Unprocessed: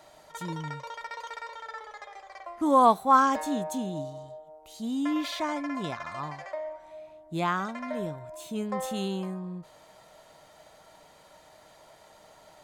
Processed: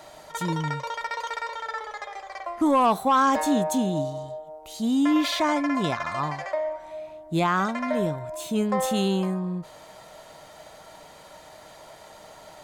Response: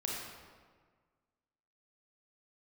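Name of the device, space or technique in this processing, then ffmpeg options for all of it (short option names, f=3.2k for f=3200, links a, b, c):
soft clipper into limiter: -af "asoftclip=type=tanh:threshold=-14.5dB,alimiter=limit=-22dB:level=0:latency=1:release=33,volume=8dB"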